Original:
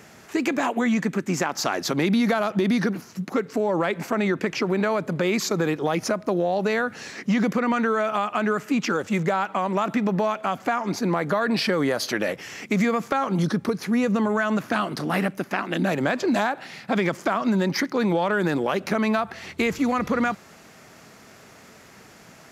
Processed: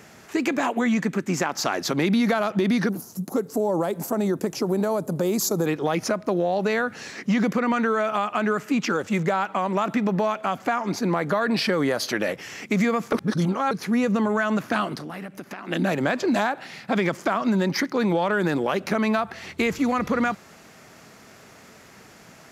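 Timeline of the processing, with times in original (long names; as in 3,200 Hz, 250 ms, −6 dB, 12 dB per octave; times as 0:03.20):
0:02.89–0:05.66: drawn EQ curve 810 Hz 0 dB, 2,200 Hz −15 dB, 11,000 Hz +13 dB
0:13.13–0:13.71: reverse
0:14.95–0:15.68: downward compressor, threshold −32 dBFS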